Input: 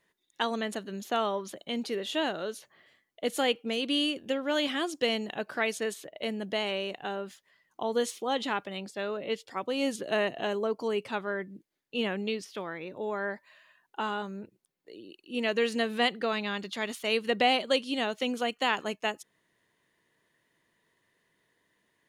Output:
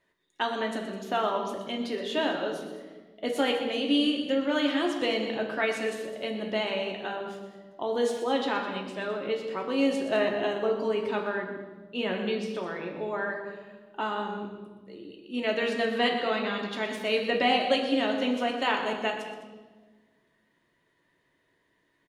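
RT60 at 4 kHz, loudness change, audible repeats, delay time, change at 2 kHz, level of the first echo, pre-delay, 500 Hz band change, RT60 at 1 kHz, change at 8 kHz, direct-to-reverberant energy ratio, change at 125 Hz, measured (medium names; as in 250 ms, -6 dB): 1.1 s, +2.0 dB, 2, 122 ms, +1.5 dB, -11.0 dB, 3 ms, +3.0 dB, 1.2 s, -4.5 dB, 0.5 dB, +1.5 dB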